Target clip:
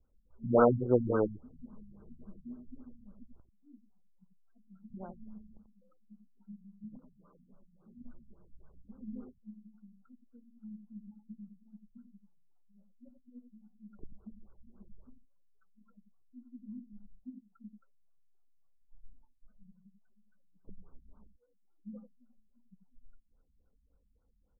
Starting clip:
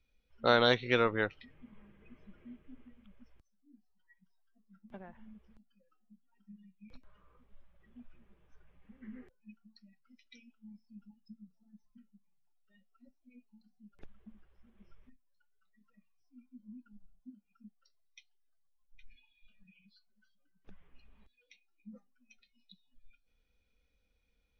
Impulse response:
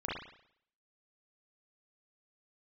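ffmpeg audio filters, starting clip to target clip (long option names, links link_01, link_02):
-filter_complex "[0:a]asettb=1/sr,asplit=3[link_01][link_02][link_03];[link_01]atrim=end=6.844[link_04];[link_02]atrim=start=6.84:end=7.98,asetpts=PTS-STARTPTS,afade=type=in:duration=0.004:curve=qsin,afade=type=out:start_time=1.136:duration=0.004:curve=qsin,lowshelf=frequency=120:width_type=q:width=3:gain=-12.5[link_05];[link_03]atrim=start=7.976[link_06];[link_04][link_05]acrossfade=duration=0.004:curve1=hsin:curve2=qsin[link_07];[link_07][link_06]acrossfade=duration=0.004:curve1=qsin:curve2=hsin,aecho=1:1:89:0.422,afftfilt=real='re*lt(b*sr/1024,220*pow(1600/220,0.5+0.5*sin(2*PI*3.6*pts/sr)))':imag='im*lt(b*sr/1024,220*pow(1600/220,0.5+0.5*sin(2*PI*3.6*pts/sr)))':win_size=1024:overlap=0.75,volume=5dB"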